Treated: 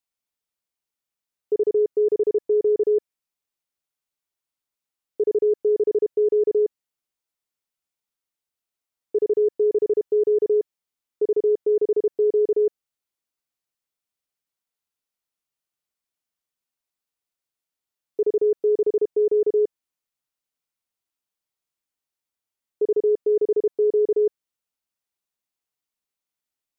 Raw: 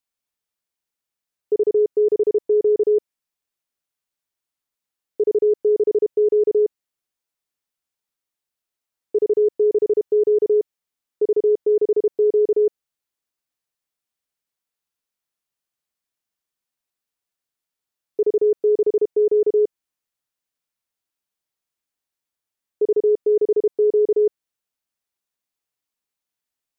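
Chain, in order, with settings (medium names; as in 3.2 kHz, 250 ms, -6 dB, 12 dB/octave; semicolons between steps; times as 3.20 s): band-stop 1.7 kHz, Q 20; trim -2.5 dB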